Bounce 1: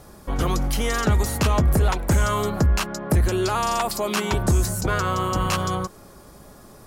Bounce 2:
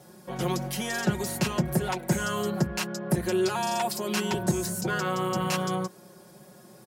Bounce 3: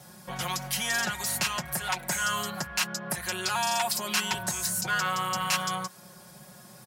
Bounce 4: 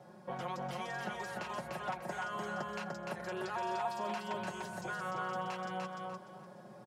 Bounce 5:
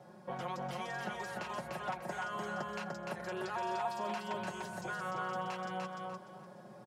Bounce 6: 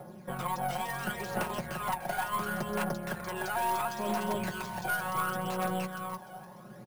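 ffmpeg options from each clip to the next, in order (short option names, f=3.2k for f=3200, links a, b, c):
-af "highpass=f=100:w=0.5412,highpass=f=100:w=1.3066,equalizer=f=1.2k:t=o:w=0.3:g=-8.5,aecho=1:1:5.5:0.94,volume=-6.5dB"
-filter_complex "[0:a]equalizer=f=360:w=1:g=-13.5,acrossover=split=710[a][b];[a]acompressor=threshold=-43dB:ratio=6[c];[c][b]amix=inputs=2:normalize=0,asoftclip=type=tanh:threshold=-19.5dB,volume=5.5dB"
-af "acompressor=threshold=-30dB:ratio=6,bandpass=f=460:t=q:w=0.96:csg=0,aecho=1:1:297|594|891|1188:0.708|0.177|0.0442|0.0111,volume=1.5dB"
-af anull
-af "aphaser=in_gain=1:out_gain=1:delay=1.4:decay=0.55:speed=0.71:type=triangular,acrusher=samples=4:mix=1:aa=0.000001,aeval=exprs='0.0708*(cos(1*acos(clip(val(0)/0.0708,-1,1)))-cos(1*PI/2))+0.0178*(cos(5*acos(clip(val(0)/0.0708,-1,1)))-cos(5*PI/2))+0.00447*(cos(6*acos(clip(val(0)/0.0708,-1,1)))-cos(6*PI/2))+0.01*(cos(7*acos(clip(val(0)/0.0708,-1,1)))-cos(7*PI/2))':c=same,volume=1.5dB"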